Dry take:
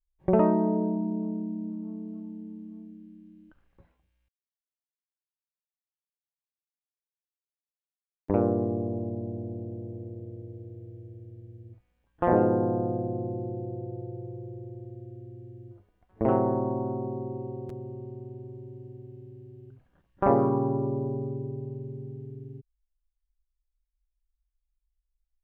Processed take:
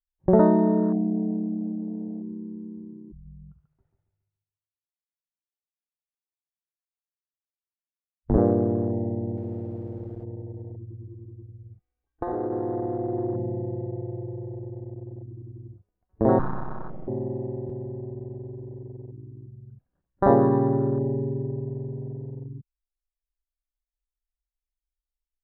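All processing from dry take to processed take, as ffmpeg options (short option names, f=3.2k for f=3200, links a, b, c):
-filter_complex "[0:a]asettb=1/sr,asplit=3[a][b][c];[a]atrim=end=3.124[d];[b]atrim=start=3.12:end=8.38,asetpts=PTS-STARTPTS,afade=t=in:d=0.004:c=qsin,afade=t=out:st=5.256:d=0.004:c=qsin,afreqshift=-160,aecho=1:1:139|278|417|556|695:0.531|0.207|0.0807|0.0315|0.0123,atrim=end_sample=231966[e];[c]atrim=start=8.376[f];[d][e]acrossfade=d=0.004:c1=hsin:c2=qsin[g];[g][f]acrossfade=d=0.004:c1=qsin:c2=hsin,asettb=1/sr,asplit=3[h][i][j];[h]atrim=end=9.374[k];[i]atrim=start=9.37:end=10.24,asetpts=PTS-STARTPTS,afade=t=in:d=0.004:c=qsin,afade=t=out:st=0.866:d=0.004:c=qsin,bandreject=f=60:t=h:w=6,bandreject=f=120:t=h:w=6,bandreject=f=180:t=h:w=6,bandreject=f=240:t=h:w=6,bandreject=f=300:t=h:w=6,bandreject=f=360:t=h:w=6,aeval=exprs='val(0)*gte(abs(val(0)),0.00794)':c=same[l];[j]atrim=start=10.236[m];[k][l]acrossfade=d=0.004:c1=hsin:c2=qsin[n];[n][m]acrossfade=d=0.004:c1=qsin:c2=hsin,asettb=1/sr,asplit=3[o][p][q];[o]atrim=end=11.074[r];[p]atrim=start=11.07:end=13.34,asetpts=PTS-STARTPTS,afade=t=in:d=0.004:c=qsin,afade=t=out:st=2.266:d=0.004:c=qsin,equalizer=f=73:t=o:w=2.2:g=-3.5,acompressor=threshold=-29dB:ratio=16:attack=3.2:release=140:knee=1:detection=peak,aecho=1:1:2.6:0.68,atrim=end_sample=100107[s];[q]atrim=start=13.336[t];[r][s]acrossfade=d=0.004:c1=hsin:c2=qsin[u];[u][t]acrossfade=d=0.004:c1=qsin:c2=hsin,asettb=1/sr,asplit=3[v][w][x];[v]atrim=end=16.394[y];[w]atrim=start=16.39:end=17.08,asetpts=PTS-STARTPTS,afade=t=in:d=0.004:c=qsin,afade=t=out:st=0.686:d=0.004:c=qsin,bandpass=f=620:t=q:w=1.6,aeval=exprs='abs(val(0))':c=same[z];[x]atrim=start=17.076[aa];[y][z]acrossfade=d=0.004:c1=hsin:c2=qsin[ab];[ab][aa]acrossfade=d=0.004:c1=qsin:c2=hsin,lowpass=f=1.1k:p=1,afwtdn=0.0141,volume=5dB"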